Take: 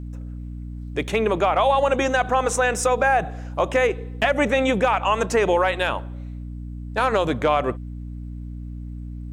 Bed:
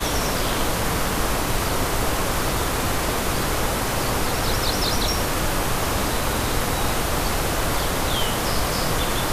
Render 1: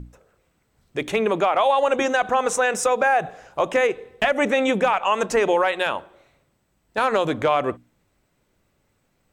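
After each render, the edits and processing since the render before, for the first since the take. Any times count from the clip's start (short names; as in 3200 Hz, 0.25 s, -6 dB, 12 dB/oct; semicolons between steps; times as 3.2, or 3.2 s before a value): notches 60/120/180/240/300 Hz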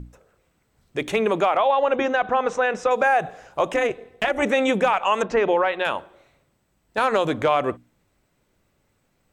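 1.57–2.91 air absorption 190 m; 3.74–4.43 AM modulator 230 Hz, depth 40%; 5.22–5.85 air absorption 190 m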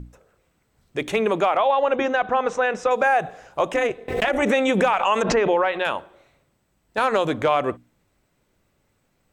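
4.08–5.81 backwards sustainer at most 57 dB/s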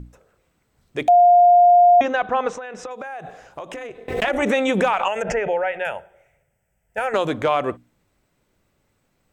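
1.08–2.01 bleep 706 Hz -8.5 dBFS; 2.51–4.04 compressor 10:1, threshold -29 dBFS; 5.08–7.14 fixed phaser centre 1100 Hz, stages 6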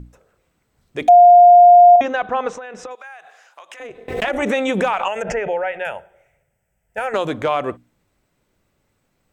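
1.02–1.96 comb 4.1 ms, depth 83%; 2.95–3.8 HPF 1200 Hz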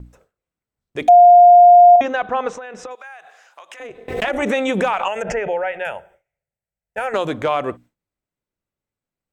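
gate with hold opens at -42 dBFS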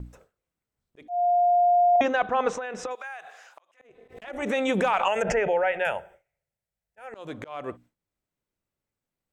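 auto swell 0.725 s; reverse; compressor 6:1, threshold -19 dBFS, peak gain reduction 12 dB; reverse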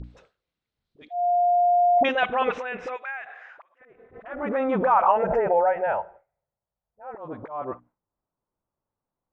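dispersion highs, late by 41 ms, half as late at 700 Hz; low-pass sweep 4000 Hz -> 1000 Hz, 1.44–5.15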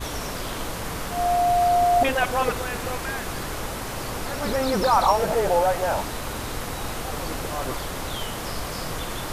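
add bed -8 dB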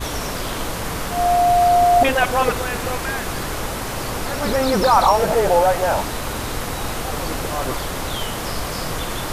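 gain +5 dB; limiter -3 dBFS, peak gain reduction 2 dB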